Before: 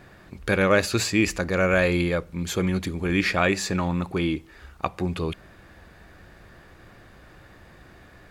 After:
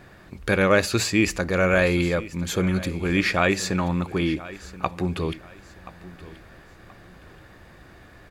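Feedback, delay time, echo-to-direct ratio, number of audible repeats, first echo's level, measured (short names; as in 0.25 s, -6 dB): 30%, 1.028 s, -17.0 dB, 2, -17.5 dB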